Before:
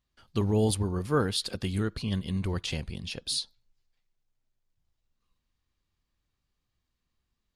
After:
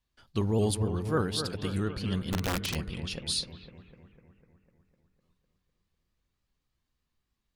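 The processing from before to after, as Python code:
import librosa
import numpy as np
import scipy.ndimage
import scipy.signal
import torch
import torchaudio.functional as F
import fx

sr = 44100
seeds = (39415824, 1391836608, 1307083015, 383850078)

p1 = fx.rider(x, sr, range_db=4, speed_s=2.0)
p2 = p1 + fx.echo_bbd(p1, sr, ms=251, stages=4096, feedback_pct=63, wet_db=-9, dry=0)
p3 = fx.overflow_wrap(p2, sr, gain_db=21.5, at=(2.32, 2.74), fade=0.02)
p4 = fx.vibrato_shape(p3, sr, shape='saw_up', rate_hz=3.4, depth_cents=100.0)
y = p4 * 10.0 ** (-2.0 / 20.0)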